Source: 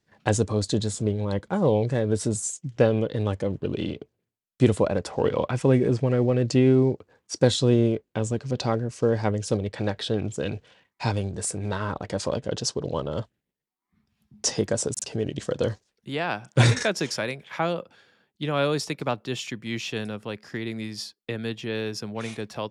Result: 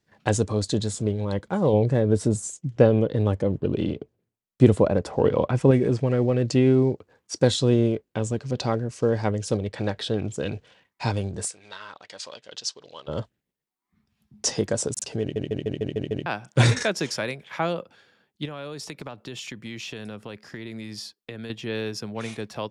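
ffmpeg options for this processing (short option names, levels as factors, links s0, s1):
-filter_complex "[0:a]asettb=1/sr,asplit=3[s0][s1][s2];[s0]atrim=end=1.734[s3];[s1]atrim=start=1.73:end=5.71,asetpts=PTS-STARTPTS,afade=t=in:d=0.004:c=qsin,afade=t=out:st=3.976:d=0.004:c=qsin,tiltshelf=f=1200:g=4[s4];[s2]atrim=start=5.706[s5];[s3][s4]acrossfade=d=0.004:c1=hsin:c2=qsin[s6];[s6][s5]acrossfade=d=0.004:c1=qsin:c2=hsin,asplit=3[s7][s8][s9];[s7]afade=t=out:st=11.47:d=0.02[s10];[s8]bandpass=f=3800:t=q:w=0.88,afade=t=in:st=11.47:d=0.02,afade=t=out:st=13.07:d=0.02[s11];[s9]afade=t=in:st=13.07:d=0.02[s12];[s10][s11][s12]amix=inputs=3:normalize=0,asettb=1/sr,asplit=3[s13][s14][s15];[s13]atrim=end=18.454[s16];[s14]atrim=start=18.45:end=21.5,asetpts=PTS-STARTPTS,afade=t=in:d=0.004:c=qsin,afade=t=out:st=3.046:d=0.004:c=qsin,acompressor=threshold=0.0282:ratio=16:attack=3.2:release=140:knee=1:detection=peak[s17];[s15]atrim=start=21.496[s18];[s16][s17]acrossfade=d=0.004:c1=hsin:c2=qsin[s19];[s19][s18]acrossfade=d=0.004:c1=qsin:c2=hsin,asplit=8[s20][s21][s22][s23][s24][s25][s26][s27];[s20]atrim=end=15.362[s28];[s21]atrim=start=15.208:end=15.362[s29];[s22]atrim=start=15.208:end=15.362[s30];[s23]atrim=start=15.208:end=15.362[s31];[s24]atrim=start=15.208:end=15.362[s32];[s25]atrim=start=15.208:end=15.362[s33];[s26]atrim=start=15.208:end=15.362[s34];[s27]atrim=start=16.258[s35];[s28][s29]acrossfade=d=0.004:c1=hsin:c2=hsin[s36];[s36][s30]acrossfade=d=0.004:c1=hsin:c2=hsin[s37];[s37][s31]acrossfade=d=0.004:c1=hsin:c2=hsin[s38];[s38][s32]acrossfade=d=0.004:c1=hsin:c2=hsin[s39];[s39][s33]acrossfade=d=0.004:c1=hsin:c2=hsin[s40];[s40][s34]acrossfade=d=0.004:c1=hsin:c2=hsin[s41];[s41][s35]acrossfade=d=0.004:c1=hsin:c2=hsin"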